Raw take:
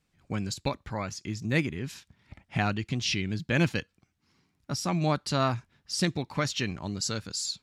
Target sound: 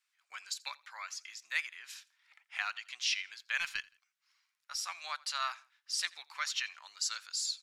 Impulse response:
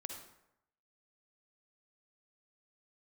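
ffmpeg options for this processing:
-filter_complex "[0:a]highpass=f=1.2k:w=0.5412,highpass=f=1.2k:w=1.3066,asettb=1/sr,asplit=3[a][b][c];[a]atrim=end=3.604[d];[b]atrim=start=3.6:end=4.76,asetpts=PTS-STARTPTS,afade=t=in:d=0.004:c=qsin,afade=t=out:st=1.156:d=0.004:c=qsin,aeval=exprs='0.133*(cos(1*acos(clip(val(0)/0.133,-1,1)))-cos(1*PI/2))+0.00376*(cos(4*acos(clip(val(0)/0.133,-1,1)))-cos(4*PI/2))':c=same[e];[c]atrim=start=4.756[f];[d][e]acrossfade=d=0.004:c1=hsin:c2=qsin[g];[g][f]acrossfade=d=0.004:c1=qsin:c2=hsin,asplit=2[h][i];[i]aecho=0:1:84|168:0.0668|0.0227[j];[h][j]amix=inputs=2:normalize=0,volume=-2.5dB"

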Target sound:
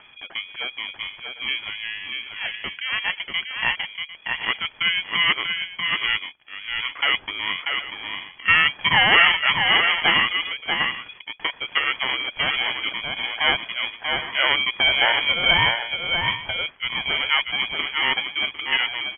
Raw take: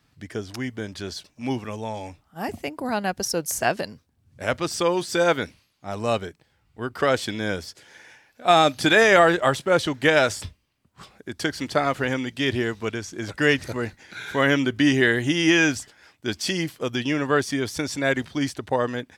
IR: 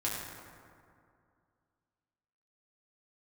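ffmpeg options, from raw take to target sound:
-filter_complex "[0:a]acompressor=mode=upward:threshold=-35dB:ratio=2.5,lowpass=f=2.6k:t=q:w=0.5098,lowpass=f=2.6k:t=q:w=0.6013,lowpass=f=2.6k:t=q:w=0.9,lowpass=f=2.6k:t=q:w=2.563,afreqshift=-3000,asplit=2[a][b];[b]aecho=0:1:639|751:0.562|0.178[c];[a][c]amix=inputs=2:normalize=0,aeval=exprs='val(0)*sin(2*PI*440*n/s)':c=same,volume=2.5dB"

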